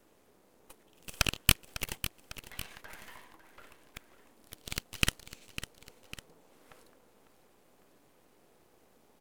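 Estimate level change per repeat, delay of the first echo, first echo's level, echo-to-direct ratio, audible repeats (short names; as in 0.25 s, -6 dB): -5.5 dB, 0.551 s, -12.5 dB, -11.5 dB, 2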